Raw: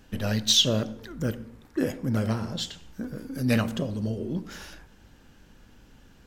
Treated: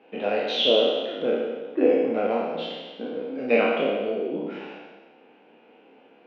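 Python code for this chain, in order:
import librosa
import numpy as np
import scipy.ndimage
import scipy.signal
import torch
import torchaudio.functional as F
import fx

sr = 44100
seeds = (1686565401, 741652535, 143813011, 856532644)

y = fx.spec_trails(x, sr, decay_s=1.41)
y = fx.cabinet(y, sr, low_hz=270.0, low_slope=24, high_hz=2600.0, hz=(460.0, 740.0, 1200.0, 1700.0, 2500.0), db=(9, 9, -4, -9, 8))
y = fx.doubler(y, sr, ms=30.0, db=-5)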